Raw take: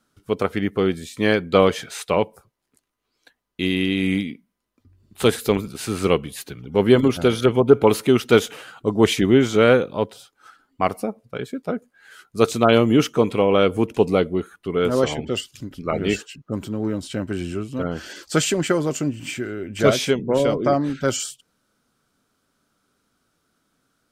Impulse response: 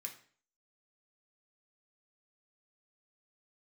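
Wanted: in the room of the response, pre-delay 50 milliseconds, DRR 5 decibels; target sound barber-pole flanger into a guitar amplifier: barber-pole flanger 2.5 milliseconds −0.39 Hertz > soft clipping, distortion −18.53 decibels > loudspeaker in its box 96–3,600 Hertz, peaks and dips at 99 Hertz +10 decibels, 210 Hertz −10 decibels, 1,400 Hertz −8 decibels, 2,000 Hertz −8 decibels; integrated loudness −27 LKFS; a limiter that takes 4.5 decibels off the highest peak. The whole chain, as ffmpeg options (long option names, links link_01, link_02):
-filter_complex "[0:a]alimiter=limit=-6dB:level=0:latency=1,asplit=2[link_01][link_02];[1:a]atrim=start_sample=2205,adelay=50[link_03];[link_02][link_03]afir=irnorm=-1:irlink=0,volume=-1.5dB[link_04];[link_01][link_04]amix=inputs=2:normalize=0,asplit=2[link_05][link_06];[link_06]adelay=2.5,afreqshift=-0.39[link_07];[link_05][link_07]amix=inputs=2:normalize=1,asoftclip=threshold=-12.5dB,highpass=96,equalizer=frequency=99:width_type=q:width=4:gain=10,equalizer=frequency=210:width_type=q:width=4:gain=-10,equalizer=frequency=1400:width_type=q:width=4:gain=-8,equalizer=frequency=2000:width_type=q:width=4:gain=-8,lowpass=frequency=3600:width=0.5412,lowpass=frequency=3600:width=1.3066"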